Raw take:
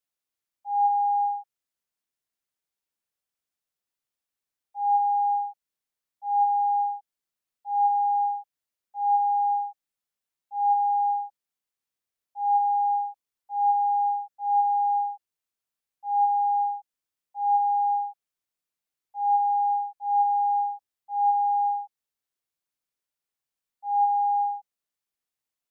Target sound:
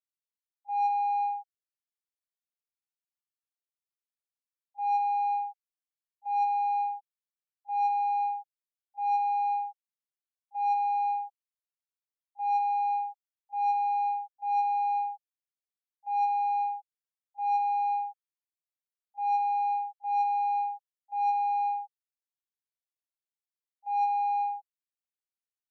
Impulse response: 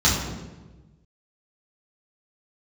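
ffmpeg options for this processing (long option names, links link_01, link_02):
-filter_complex "[0:a]agate=range=-14dB:threshold=-35dB:ratio=16:detection=peak,highpass=750,asplit=2[link_01][link_02];[link_02]asoftclip=type=tanh:threshold=-28dB,volume=-3dB[link_03];[link_01][link_03]amix=inputs=2:normalize=0,volume=-5dB"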